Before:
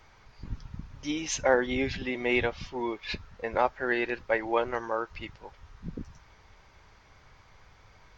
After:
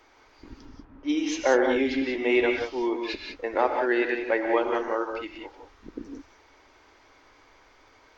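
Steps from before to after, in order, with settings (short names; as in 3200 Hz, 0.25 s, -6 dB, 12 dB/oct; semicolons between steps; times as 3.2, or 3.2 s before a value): resonant low shelf 220 Hz -10.5 dB, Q 3; 0.65–2.06 low-pass opened by the level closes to 1300 Hz, open at -20.5 dBFS; non-linear reverb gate 0.21 s rising, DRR 3 dB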